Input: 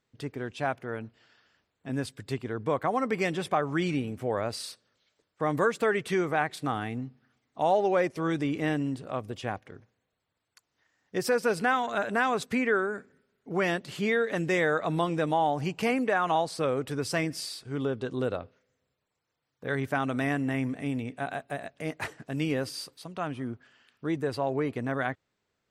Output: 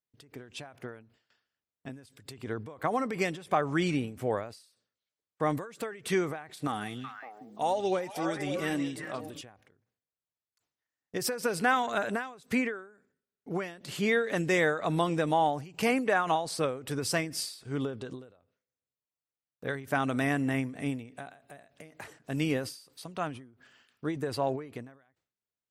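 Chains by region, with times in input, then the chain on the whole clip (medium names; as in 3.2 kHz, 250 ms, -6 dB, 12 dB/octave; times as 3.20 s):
6.67–9.41 s: treble shelf 6.3 kHz +12 dB + flange 1.9 Hz, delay 3.1 ms, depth 2.9 ms, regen +37% + repeats whose band climbs or falls 184 ms, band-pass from 4 kHz, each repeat -1.4 oct, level -1 dB
whole clip: gate with hold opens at -51 dBFS; treble shelf 6.3 kHz +7 dB; endings held to a fixed fall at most 110 dB/s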